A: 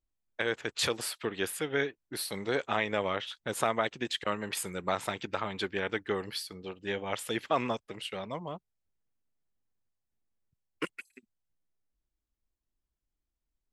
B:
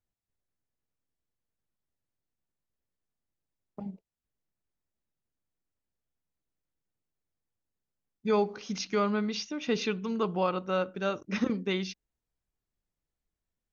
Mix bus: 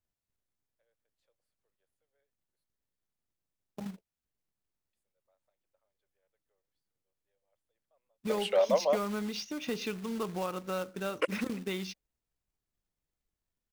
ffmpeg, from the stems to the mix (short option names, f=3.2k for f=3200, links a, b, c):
-filter_complex "[0:a]highpass=f=560:t=q:w=6.4,adelay=400,volume=1.5dB,asplit=3[a][b][c];[a]atrim=end=2.64,asetpts=PTS-STARTPTS,afade=t=out:st=2.636:d=0.004:c=hsin[d];[b]atrim=start=2.64:end=4.93,asetpts=PTS-STARTPTS,volume=0[e];[c]atrim=start=4.93,asetpts=PTS-STARTPTS,afade=t=in:d=0.004:c=hsin[f];[d][e][f]concat=n=3:v=0:a=1[g];[1:a]acompressor=threshold=-35dB:ratio=2,acrusher=bits=3:mode=log:mix=0:aa=0.000001,volume=-0.5dB,asplit=2[h][i];[i]apad=whole_len=622892[j];[g][j]sidechaingate=range=-57dB:threshold=-48dB:ratio=16:detection=peak[k];[k][h]amix=inputs=2:normalize=0"